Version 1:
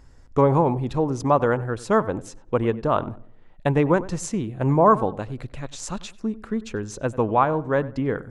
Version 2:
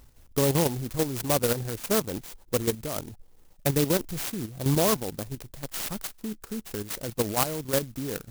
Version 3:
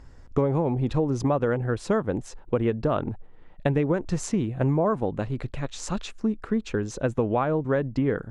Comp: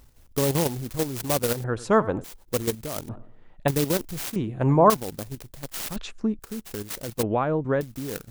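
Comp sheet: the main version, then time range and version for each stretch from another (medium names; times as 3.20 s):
2
1.64–2.24 s: from 1
3.09–3.68 s: from 1
4.36–4.90 s: from 1
5.96–6.39 s: from 3
7.23–7.81 s: from 3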